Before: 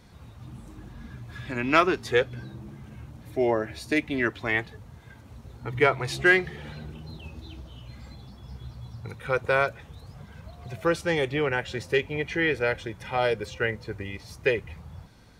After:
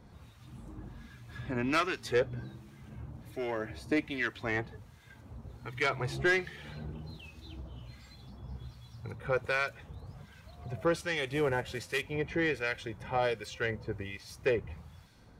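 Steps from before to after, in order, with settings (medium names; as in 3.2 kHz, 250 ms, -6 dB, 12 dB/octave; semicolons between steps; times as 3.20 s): 11.27–12.02 s: CVSD coder 64 kbps; saturation -16 dBFS, distortion -14 dB; harmonic tremolo 1.3 Hz, depth 70%, crossover 1.4 kHz; trim -1 dB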